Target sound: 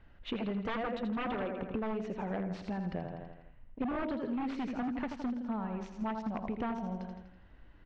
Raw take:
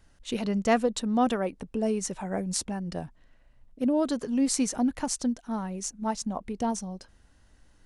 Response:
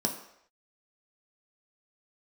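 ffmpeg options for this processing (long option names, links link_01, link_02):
-filter_complex "[0:a]asplit=2[link_01][link_02];[link_02]aeval=exprs='sgn(val(0))*max(abs(val(0))-0.00447,0)':channel_layout=same,volume=-4dB[link_03];[link_01][link_03]amix=inputs=2:normalize=0,aecho=1:1:82|164|246|328|410|492:0.398|0.211|0.112|0.0593|0.0314|0.0166,aeval=exprs='0.112*(abs(mod(val(0)/0.112+3,4)-2)-1)':channel_layout=same,acompressor=threshold=-34dB:ratio=10,lowpass=frequency=3000:width=0.5412,lowpass=frequency=3000:width=1.3066,volume=1.5dB"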